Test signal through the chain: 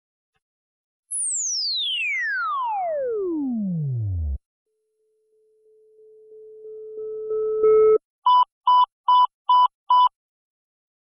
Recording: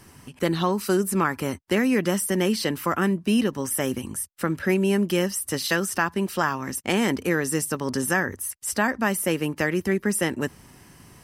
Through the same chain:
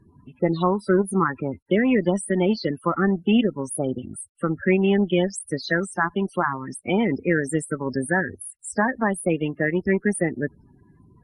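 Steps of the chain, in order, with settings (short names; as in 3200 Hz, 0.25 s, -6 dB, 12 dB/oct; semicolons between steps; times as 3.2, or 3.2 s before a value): added harmonics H 7 -23 dB, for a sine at -7.5 dBFS; loudest bins only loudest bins 16; gain +4 dB; MP2 64 kbps 44100 Hz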